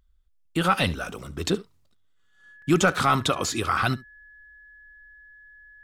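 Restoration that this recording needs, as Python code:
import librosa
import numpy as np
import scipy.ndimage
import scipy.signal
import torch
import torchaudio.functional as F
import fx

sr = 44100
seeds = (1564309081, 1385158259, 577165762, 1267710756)

y = fx.notch(x, sr, hz=1700.0, q=30.0)
y = fx.fix_interpolate(y, sr, at_s=(1.63, 2.62), length_ms=2.8)
y = fx.fix_echo_inverse(y, sr, delay_ms=71, level_db=-20.5)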